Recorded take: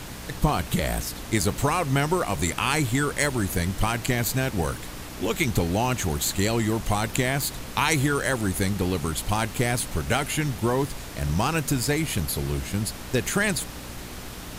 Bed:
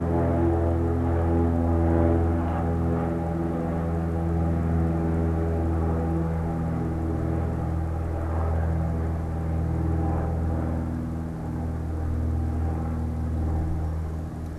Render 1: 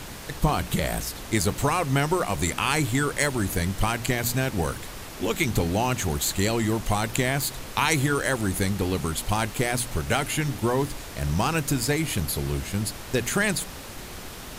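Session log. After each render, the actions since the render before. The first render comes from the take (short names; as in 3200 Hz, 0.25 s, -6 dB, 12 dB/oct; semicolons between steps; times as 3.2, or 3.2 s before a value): de-hum 60 Hz, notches 5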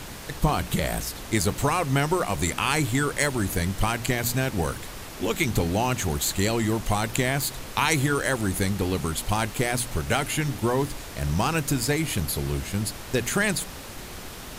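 nothing audible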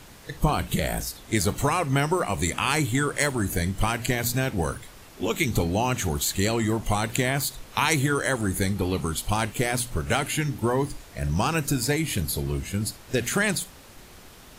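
noise print and reduce 9 dB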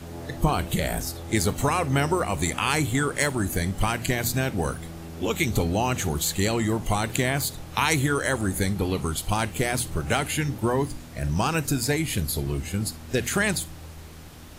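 add bed -14.5 dB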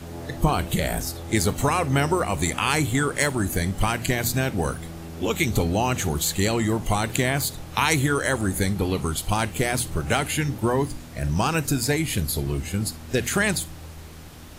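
gain +1.5 dB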